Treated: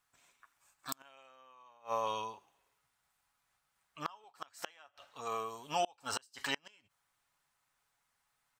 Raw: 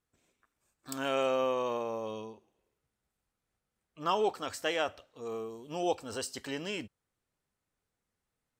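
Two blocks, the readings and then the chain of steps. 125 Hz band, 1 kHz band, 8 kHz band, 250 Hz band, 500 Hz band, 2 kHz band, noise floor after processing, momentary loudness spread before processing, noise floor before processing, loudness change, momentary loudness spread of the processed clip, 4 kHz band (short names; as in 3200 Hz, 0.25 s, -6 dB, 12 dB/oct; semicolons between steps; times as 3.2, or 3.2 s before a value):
-8.0 dB, -3.0 dB, -2.5 dB, -12.5 dB, -11.0 dB, -5.0 dB, -81 dBFS, 12 LU, under -85 dBFS, -6.0 dB, 23 LU, -4.0 dB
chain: resonant low shelf 620 Hz -12 dB, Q 1.5; comb 7.1 ms, depth 34%; flipped gate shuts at -28 dBFS, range -33 dB; gain +7 dB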